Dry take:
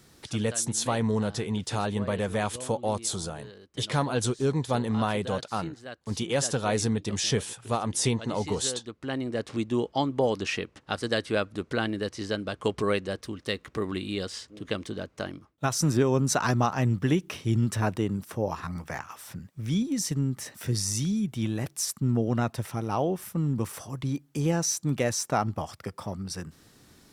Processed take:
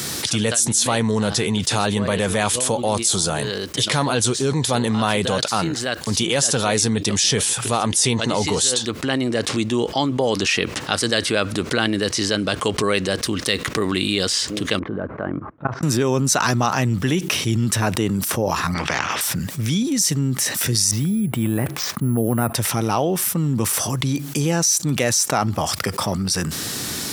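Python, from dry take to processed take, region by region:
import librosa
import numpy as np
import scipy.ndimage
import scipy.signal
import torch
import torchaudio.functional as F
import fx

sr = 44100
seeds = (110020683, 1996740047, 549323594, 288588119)

y = fx.chain(x, sr, fx.lowpass(hz=1500.0, slope=24),
    fx.level_steps(step_db=24), at=(14.79, 15.83))
y = fx.chain(y, sr, fx.lowpass(hz=2200.0, slope=12),
    fx.spectral_comp(ratio=2.0), at=(18.74, 19.21))
y = fx.chain(y, sr, fx.lowpass(hz=1700.0, slope=12),
    fx.resample_bad(factor=4, down='none', up='hold'), at=(20.91, 22.55))
y = scipy.signal.sosfilt(scipy.signal.butter(2, 86.0, 'highpass', fs=sr, output='sos'), y)
y = fx.high_shelf(y, sr, hz=2200.0, db=9.5)
y = fx.env_flatten(y, sr, amount_pct=70)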